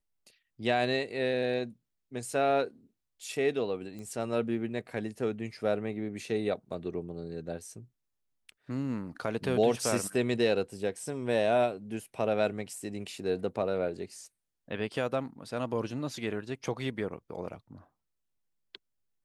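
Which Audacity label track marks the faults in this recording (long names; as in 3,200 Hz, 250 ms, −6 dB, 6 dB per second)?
3.990000	3.990000	click −31 dBFS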